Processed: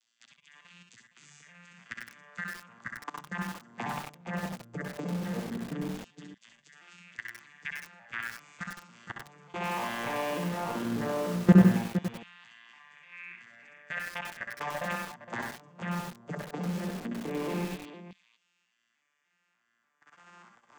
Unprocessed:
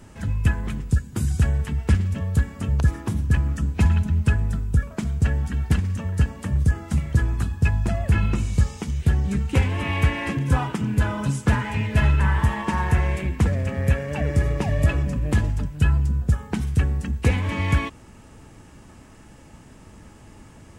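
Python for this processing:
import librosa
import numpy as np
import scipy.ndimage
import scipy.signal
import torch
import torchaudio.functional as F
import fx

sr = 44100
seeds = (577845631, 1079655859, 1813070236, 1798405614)

y = fx.vocoder_arp(x, sr, chord='major triad', root=46, every_ms=296)
y = fx.filter_lfo_highpass(y, sr, shape='saw_down', hz=0.17, low_hz=340.0, high_hz=3900.0, q=1.8)
y = fx.peak_eq(y, sr, hz=190.0, db=13.0, octaves=0.4)
y = fx.level_steps(y, sr, step_db=22)
y = fx.spec_box(y, sr, start_s=13.12, length_s=0.24, low_hz=1000.0, high_hz=2700.0, gain_db=10)
y = fx.echo_multitap(y, sr, ms=(63, 68, 111, 463), db=(-6.0, -7.0, -11.5, -11.0))
y = fx.echo_crushed(y, sr, ms=95, feedback_pct=35, bits=8, wet_db=-3.0)
y = y * librosa.db_to_amplitude(8.5)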